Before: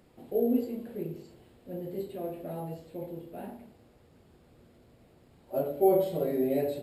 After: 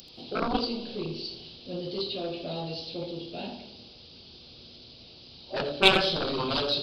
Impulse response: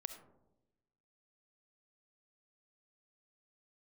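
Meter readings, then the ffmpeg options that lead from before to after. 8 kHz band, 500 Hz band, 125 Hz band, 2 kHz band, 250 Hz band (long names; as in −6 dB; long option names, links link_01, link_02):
can't be measured, −2.0 dB, +3.0 dB, +23.5 dB, −1.5 dB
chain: -filter_complex "[0:a]aeval=exprs='0.266*(cos(1*acos(clip(val(0)/0.266,-1,1)))-cos(1*PI/2))+0.106*(cos(7*acos(clip(val(0)/0.266,-1,1)))-cos(7*PI/2))':channel_layout=same,aresample=11025,aresample=44100,aexciter=amount=10.6:drive=9.2:freq=3000,asplit=2[link_01][link_02];[1:a]atrim=start_sample=2205,asetrate=27783,aresample=44100,adelay=83[link_03];[link_02][link_03]afir=irnorm=-1:irlink=0,volume=-11.5dB[link_04];[link_01][link_04]amix=inputs=2:normalize=0,volume=-1.5dB"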